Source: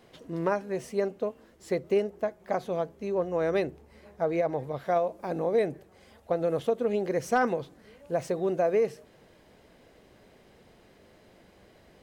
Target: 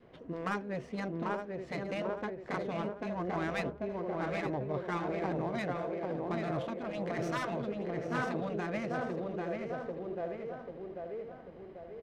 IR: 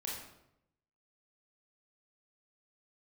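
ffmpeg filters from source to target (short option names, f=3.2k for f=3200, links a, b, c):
-filter_complex "[0:a]asplit=2[a][b];[b]adelay=791,lowpass=f=4.5k:p=1,volume=-5dB,asplit=2[c][d];[d]adelay=791,lowpass=f=4.5k:p=1,volume=0.5,asplit=2[e][f];[f]adelay=791,lowpass=f=4.5k:p=1,volume=0.5,asplit=2[g][h];[h]adelay=791,lowpass=f=4.5k:p=1,volume=0.5,asplit=2[i][j];[j]adelay=791,lowpass=f=4.5k:p=1,volume=0.5,asplit=2[k][l];[l]adelay=791,lowpass=f=4.5k:p=1,volume=0.5[m];[c][e][g][i][k][m]amix=inputs=6:normalize=0[n];[a][n]amix=inputs=2:normalize=0,adynamicequalizer=threshold=0.00794:dfrequency=790:dqfactor=2.5:tfrequency=790:tqfactor=2.5:attack=5:release=100:ratio=0.375:range=2.5:mode=cutabove:tftype=bell,adynamicsmooth=sensitivity=7:basefreq=2k,asplit=2[o][p];[p]aecho=0:1:868:0.224[q];[o][q]amix=inputs=2:normalize=0,afftfilt=real='re*lt(hypot(re,im),0.2)':imag='im*lt(hypot(re,im),0.2)':win_size=1024:overlap=0.75"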